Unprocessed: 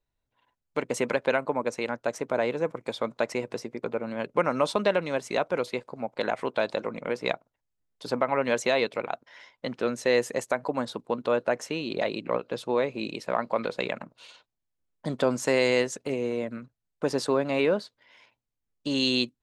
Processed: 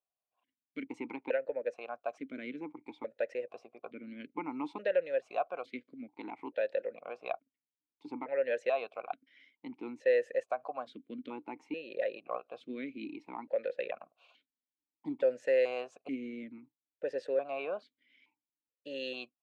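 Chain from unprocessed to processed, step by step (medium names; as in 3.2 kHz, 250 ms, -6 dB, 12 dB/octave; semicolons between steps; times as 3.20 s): dynamic bell 1.5 kHz, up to +5 dB, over -45 dBFS, Q 3.8; stepped vowel filter 2.3 Hz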